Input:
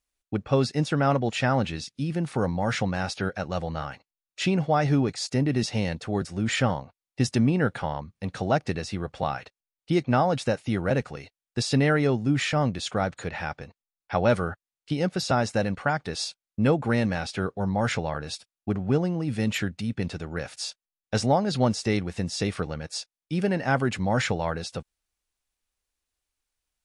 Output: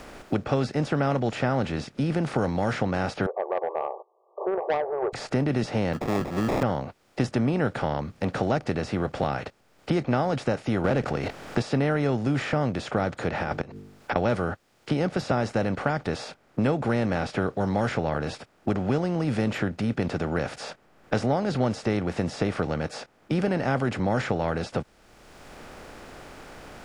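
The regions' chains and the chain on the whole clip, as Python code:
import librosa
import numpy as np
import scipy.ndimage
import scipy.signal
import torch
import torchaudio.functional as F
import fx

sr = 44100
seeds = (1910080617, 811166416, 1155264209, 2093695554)

y = fx.chain(x, sr, fx.brickwall_bandpass(low_hz=360.0, high_hz=1200.0),
    fx.transformer_sat(knee_hz=1100.0), at=(3.26, 5.13))
y = fx.chain(y, sr, fx.highpass(hz=130.0, slope=12),
    fx.sample_hold(seeds[0], rate_hz=1500.0, jitter_pct=0), at=(5.93, 6.63))
y = fx.chain(y, sr, fx.leveller(passes=1),
    fx.high_shelf(hz=9500.0, db=-10.5),
    fx.pre_swell(db_per_s=43.0), at=(10.84, 11.62))
y = fx.chain(y, sr, fx.over_compress(threshold_db=-34.0, ratio=-0.5),
    fx.hum_notches(base_hz=50, count=9),
    fx.gate_flip(shuts_db=-20.0, range_db=-26), at=(13.42, 14.16))
y = fx.bin_compress(y, sr, power=0.6)
y = fx.high_shelf(y, sr, hz=2700.0, db=-9.0)
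y = fx.band_squash(y, sr, depth_pct=70)
y = y * 10.0 ** (-4.0 / 20.0)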